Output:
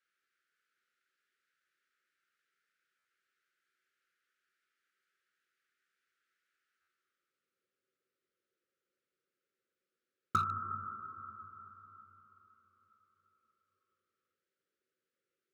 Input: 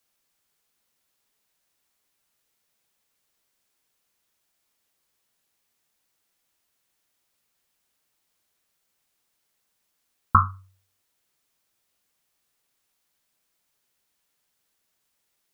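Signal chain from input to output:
elliptic band-stop filter 530–1,300 Hz, stop band 40 dB
hollow resonant body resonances 370/750 Hz, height 10 dB, ringing for 90 ms
on a send at −5 dB: convolution reverb RT60 4.2 s, pre-delay 3 ms
on the sum: band-pass filter sweep 1,500 Hz → 740 Hz, 0:06.71–0:07.65
in parallel at −5.5 dB: wave folding −33.5 dBFS
on the sum: high-pass filter 72 Hz
parametric band 97 Hz +7 dB 2.9 octaves
buffer that repeats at 0:02.98/0:06.81, samples 512, times 5

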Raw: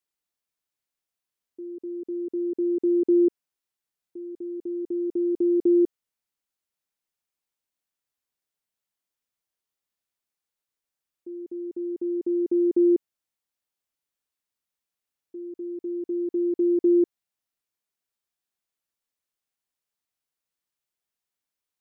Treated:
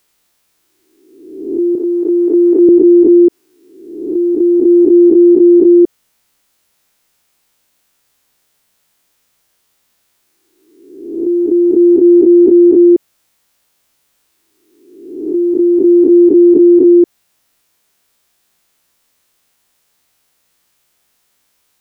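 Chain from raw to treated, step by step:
peak hold with a rise ahead of every peak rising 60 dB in 0.93 s
0:01.75–0:02.69: high-pass filter 410 Hz 12 dB per octave
boost into a limiter +24.5 dB
level −1 dB

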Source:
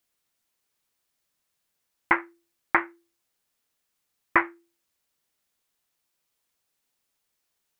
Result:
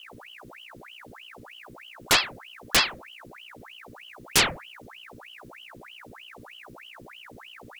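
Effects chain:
sine wavefolder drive 19 dB, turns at −4.5 dBFS
mains hum 60 Hz, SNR 14 dB
ring modulator whose carrier an LFO sweeps 1,600 Hz, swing 90%, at 3.2 Hz
level −6.5 dB

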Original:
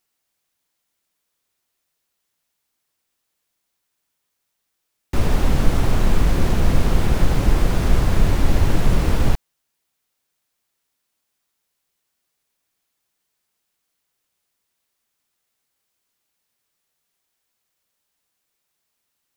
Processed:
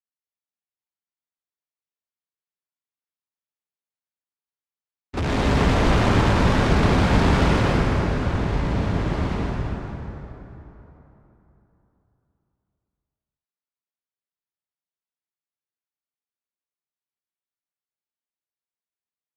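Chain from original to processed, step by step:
noise gate with hold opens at −15 dBFS
high-pass filter 62 Hz 12 dB per octave
high-shelf EQ 8,100 Hz −11.5 dB
notch filter 500 Hz, Q 12
0:05.17–0:07.59: leveller curve on the samples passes 5
soft clipping −17 dBFS, distortion −13 dB
high-frequency loss of the air 68 metres
dense smooth reverb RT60 3.5 s, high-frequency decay 0.6×, pre-delay 105 ms, DRR −4.5 dB
level −5 dB

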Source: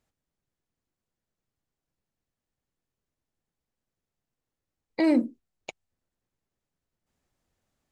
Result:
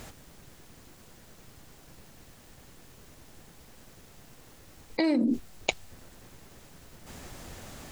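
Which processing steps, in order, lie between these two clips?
dynamic equaliser 4,100 Hz, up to +7 dB, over −52 dBFS, Q 1.4
envelope flattener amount 100%
level −5.5 dB

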